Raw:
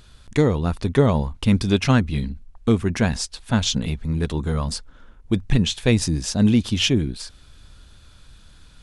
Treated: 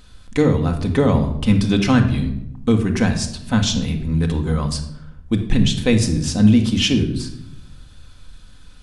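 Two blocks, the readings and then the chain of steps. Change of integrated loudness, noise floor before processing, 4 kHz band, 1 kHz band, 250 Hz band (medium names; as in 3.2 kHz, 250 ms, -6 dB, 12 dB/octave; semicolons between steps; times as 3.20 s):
+3.0 dB, -49 dBFS, +1.5 dB, +1.5 dB, +4.0 dB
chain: simulated room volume 2200 m³, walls furnished, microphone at 2 m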